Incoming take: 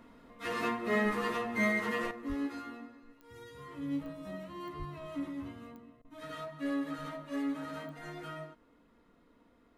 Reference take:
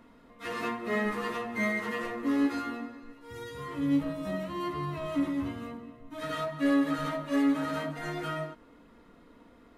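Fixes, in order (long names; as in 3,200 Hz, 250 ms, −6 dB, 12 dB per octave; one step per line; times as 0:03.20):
click removal
0:02.28–0:02.40: high-pass filter 140 Hz 24 dB per octave
0:04.78–0:04.90: high-pass filter 140 Hz 24 dB per octave
repair the gap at 0:06.02, 25 ms
level 0 dB, from 0:02.11 +9 dB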